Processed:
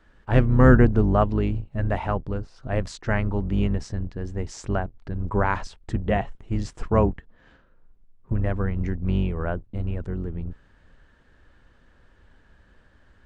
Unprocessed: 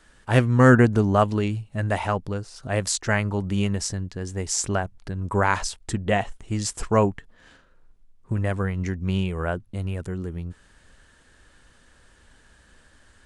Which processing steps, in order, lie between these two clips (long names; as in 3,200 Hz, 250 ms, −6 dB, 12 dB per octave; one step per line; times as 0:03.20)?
sub-octave generator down 2 octaves, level −2 dB
head-to-tape spacing loss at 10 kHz 25 dB